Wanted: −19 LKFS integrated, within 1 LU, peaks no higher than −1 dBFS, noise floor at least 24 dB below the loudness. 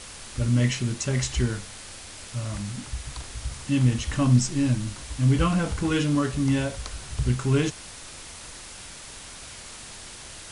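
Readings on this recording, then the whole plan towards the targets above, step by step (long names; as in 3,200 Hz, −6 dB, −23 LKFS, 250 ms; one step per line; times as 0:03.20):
background noise floor −42 dBFS; target noise floor −50 dBFS; integrated loudness −25.5 LKFS; sample peak −8.5 dBFS; target loudness −19.0 LKFS
→ noise reduction from a noise print 8 dB
level +6.5 dB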